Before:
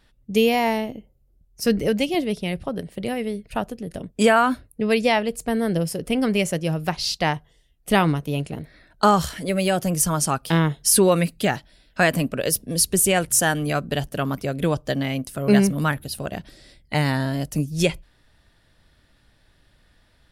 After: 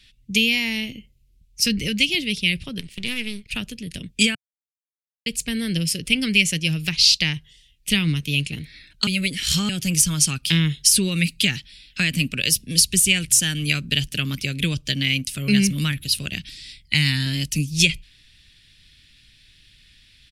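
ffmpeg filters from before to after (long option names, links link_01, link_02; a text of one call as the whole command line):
ffmpeg -i in.wav -filter_complex "[0:a]asettb=1/sr,asplit=3[link_01][link_02][link_03];[link_01]atrim=end=2.794[link_04];[link_02]atrim=start=2.79:end=3.48,asetpts=PTS-STARTPTS,afade=type=in:duration=0.004:curve=qsin,afade=type=out:start_time=0.686:duration=0.004:curve=qsin,aeval=exprs='if(lt(val(0),0),0.251*val(0),val(0))':channel_layout=same[link_05];[link_03]atrim=start=3.476[link_06];[link_04][link_05]acrossfade=duration=0.004:curve1=hsin:curve2=qsin[link_07];[link_07][link_06]acrossfade=duration=0.004:curve1=qsin:curve2=hsin,asettb=1/sr,asplit=3[link_08][link_09][link_10];[link_08]atrim=end=16.374[link_11];[link_09]atrim=start=16.37:end=17.26,asetpts=PTS-STARTPTS,afade=type=in:duration=0.004:curve=qsin,afade=type=out:start_time=0.886:duration=0.004:curve=qsin,equalizer=frequency=500:width_type=o:width=0.92:gain=-8.5[link_12];[link_10]atrim=start=17.256[link_13];[link_11][link_12]acrossfade=duration=0.004:curve1=hsin:curve2=qsin[link_14];[link_14][link_13]acrossfade=duration=0.004:curve1=qsin:curve2=hsin,asplit=5[link_15][link_16][link_17][link_18][link_19];[link_15]atrim=end=4.35,asetpts=PTS-STARTPTS,afade=type=out:start_time=4.346:duration=0.004:curve=hsin[link_20];[link_16]atrim=start=4.35:end=5.26,asetpts=PTS-STARTPTS,volume=0[link_21];[link_17]atrim=start=5.26:end=9.072,asetpts=PTS-STARTPTS,afade=type=in:duration=0.004:curve=hsin[link_22];[link_18]atrim=start=9.068:end=9.692,asetpts=PTS-STARTPTS,areverse[link_23];[link_19]atrim=start=9.688[link_24];[link_20][link_21][link_22]concat=n=3:v=0:a=1[link_25];[link_25][link_23]acrossfade=duration=0.004:curve1=hsin:curve2=hsin[link_26];[link_26][link_24]acrossfade=duration=0.004:curve1=hsin:curve2=hsin,highshelf=frequency=11000:gain=-3.5,acrossover=split=290[link_27][link_28];[link_28]acompressor=threshold=-23dB:ratio=6[link_29];[link_27][link_29]amix=inputs=2:normalize=0,firequalizer=gain_entry='entry(140,0);entry(700,-21);entry(2400,13);entry(14000,3)':delay=0.05:min_phase=1,volume=2dB" out.wav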